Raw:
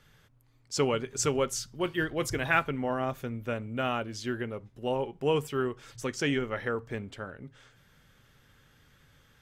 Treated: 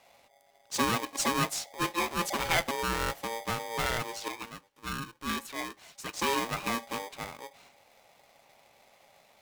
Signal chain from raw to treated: 4.28–6.14 HPF 1000 Hz 6 dB/oct; soft clip -17 dBFS, distortion -20 dB; polarity switched at an audio rate 690 Hz

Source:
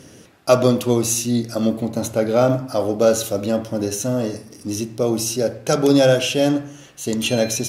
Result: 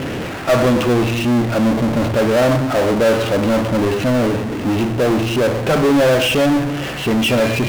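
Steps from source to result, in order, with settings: steep low-pass 3000 Hz; power-law curve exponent 0.35; gain -5 dB

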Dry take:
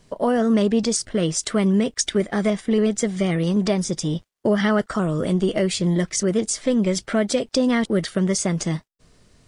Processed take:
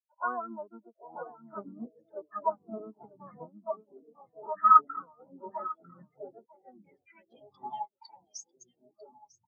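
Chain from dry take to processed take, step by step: HPF 58 Hz 24 dB/oct; dynamic EQ 250 Hz, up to +6 dB, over -36 dBFS, Q 4.8; soft clip -14 dBFS, distortion -15 dB; harmoniser +7 st -5 dB; band-pass sweep 1300 Hz -> 6900 Hz, 5.98–8.85; echo 0.948 s -5 dB; echoes that change speed 0.678 s, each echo -7 st, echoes 3, each echo -6 dB; spectral expander 4:1; gain +8.5 dB

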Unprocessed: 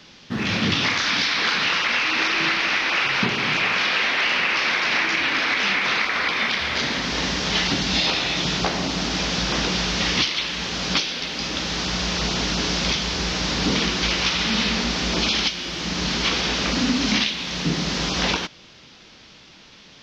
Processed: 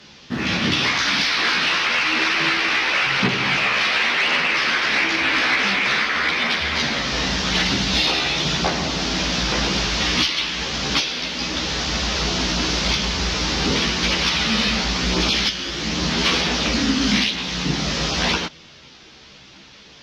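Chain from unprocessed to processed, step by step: chorus voices 2, 0.46 Hz, delay 14 ms, depth 1.8 ms; added harmonics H 5 -30 dB, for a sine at -10.5 dBFS; gain +4 dB

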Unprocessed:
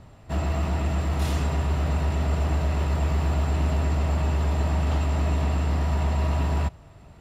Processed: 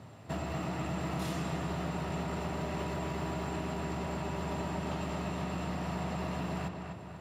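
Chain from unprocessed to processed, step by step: HPF 100 Hz 24 dB/oct; compressor, threshold -33 dBFS, peak gain reduction 8.5 dB; on a send: darkening echo 0.249 s, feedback 53%, low-pass 4400 Hz, level -5.5 dB

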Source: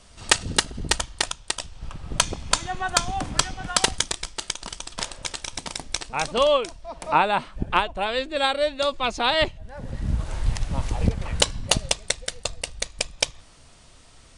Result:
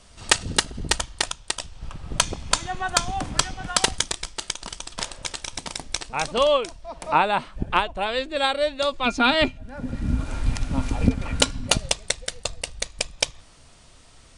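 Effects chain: 9.05–11.75 small resonant body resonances 260/1400/2400 Hz, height 17 dB -> 13 dB, ringing for 90 ms

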